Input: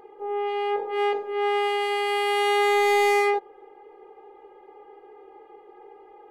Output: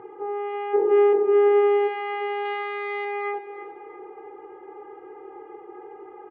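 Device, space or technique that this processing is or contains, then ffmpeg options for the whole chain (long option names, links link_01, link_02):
bass amplifier: -filter_complex "[0:a]asettb=1/sr,asplit=3[link_01][link_02][link_03];[link_01]atrim=end=2.454[link_04];[link_02]atrim=start=2.45:end=3.05,asetpts=PTS-STARTPTS,afade=type=in:duration=0.004:curve=qsin,afade=type=out:start_time=0.596:duration=0.004:curve=qsin,aemphasis=mode=production:type=75fm[link_05];[link_03]atrim=start=3.046[link_06];[link_04][link_05]acrossfade=duration=0.004:curve1=hsin:curve2=qsin[link_07];[link_07][link_06]acrossfade=duration=0.004:curve1=qsin:curve2=hsin,bandreject=frequency=67.23:width_type=h:width=4,bandreject=frequency=134.46:width_type=h:width=4,bandreject=frequency=201.69:width_type=h:width=4,bandreject=frequency=268.92:width_type=h:width=4,bandreject=frequency=336.15:width_type=h:width=4,bandreject=frequency=403.38:width_type=h:width=4,bandreject=frequency=470.61:width_type=h:width=4,bandreject=frequency=537.84:width_type=h:width=4,bandreject=frequency=605.07:width_type=h:width=4,bandreject=frequency=672.3:width_type=h:width=4,bandreject=frequency=739.53:width_type=h:width=4,bandreject=frequency=806.76:width_type=h:width=4,bandreject=frequency=873.99:width_type=h:width=4,bandreject=frequency=941.22:width_type=h:width=4,bandreject=frequency=1008.45:width_type=h:width=4,bandreject=frequency=1075.68:width_type=h:width=4,bandreject=frequency=1142.91:width_type=h:width=4,bandreject=frequency=1210.14:width_type=h:width=4,bandreject=frequency=1277.37:width_type=h:width=4,bandreject=frequency=1344.6:width_type=h:width=4,bandreject=frequency=1411.83:width_type=h:width=4,bandreject=frequency=1479.06:width_type=h:width=4,bandreject=frequency=1546.29:width_type=h:width=4,bandreject=frequency=1613.52:width_type=h:width=4,bandreject=frequency=1680.75:width_type=h:width=4,bandreject=frequency=1747.98:width_type=h:width=4,bandreject=frequency=1815.21:width_type=h:width=4,bandreject=frequency=1882.44:width_type=h:width=4,bandreject=frequency=1949.67:width_type=h:width=4,bandreject=frequency=2016.9:width_type=h:width=4,bandreject=frequency=2084.13:width_type=h:width=4,bandreject=frequency=2151.36:width_type=h:width=4,bandreject=frequency=2218.59:width_type=h:width=4,bandreject=frequency=2285.82:width_type=h:width=4,bandreject=frequency=2353.05:width_type=h:width=4,bandreject=frequency=2420.28:width_type=h:width=4,bandreject=frequency=2487.51:width_type=h:width=4,bandreject=frequency=2554.74:width_type=h:width=4,acompressor=threshold=-34dB:ratio=4,highpass=70,equalizer=frequency=120:width_type=q:width=4:gain=10,equalizer=frequency=340:width_type=q:width=4:gain=6,equalizer=frequency=590:width_type=q:width=4:gain=-8,equalizer=frequency=1400:width_type=q:width=4:gain=6,lowpass=frequency=2400:width=0.5412,lowpass=frequency=2400:width=1.3066,asplit=3[link_08][link_09][link_10];[link_08]afade=type=out:start_time=0.73:duration=0.02[link_11];[link_09]equalizer=frequency=350:width=0.91:gain=14.5,afade=type=in:start_time=0.73:duration=0.02,afade=type=out:start_time=1.87:duration=0.02[link_12];[link_10]afade=type=in:start_time=1.87:duration=0.02[link_13];[link_11][link_12][link_13]amix=inputs=3:normalize=0,asplit=2[link_14][link_15];[link_15]adelay=332,lowpass=frequency=3000:poles=1,volume=-12dB,asplit=2[link_16][link_17];[link_17]adelay=332,lowpass=frequency=3000:poles=1,volume=0.48,asplit=2[link_18][link_19];[link_19]adelay=332,lowpass=frequency=3000:poles=1,volume=0.48,asplit=2[link_20][link_21];[link_21]adelay=332,lowpass=frequency=3000:poles=1,volume=0.48,asplit=2[link_22][link_23];[link_23]adelay=332,lowpass=frequency=3000:poles=1,volume=0.48[link_24];[link_14][link_16][link_18][link_20][link_22][link_24]amix=inputs=6:normalize=0,volume=5.5dB"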